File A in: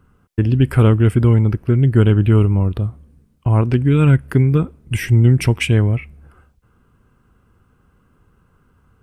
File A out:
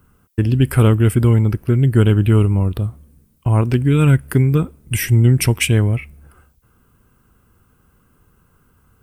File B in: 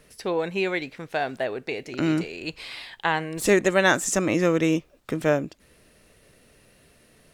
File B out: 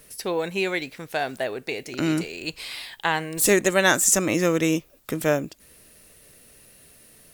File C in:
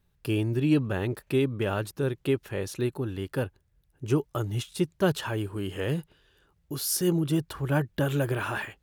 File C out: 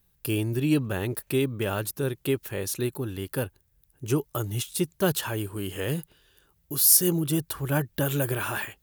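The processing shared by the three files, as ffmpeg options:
-af "aemphasis=mode=production:type=50fm"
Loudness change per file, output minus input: 0.0, +1.0, +2.5 LU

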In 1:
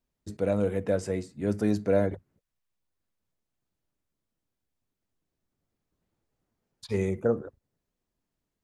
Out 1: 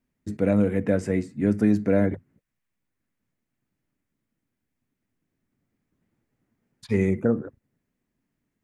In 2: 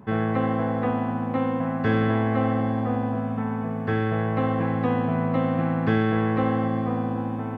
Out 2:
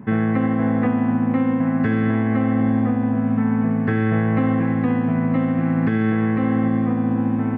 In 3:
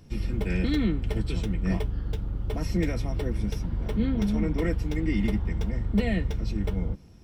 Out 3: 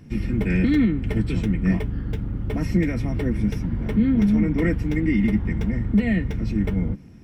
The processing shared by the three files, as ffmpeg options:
-af "equalizer=f=125:t=o:w=1:g=6,equalizer=f=250:t=o:w=1:g=10,equalizer=f=2k:t=o:w=1:g=9,equalizer=f=4k:t=o:w=1:g=-4,alimiter=limit=-10.5dB:level=0:latency=1:release=217"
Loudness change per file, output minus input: +5.0, +5.0, +6.0 LU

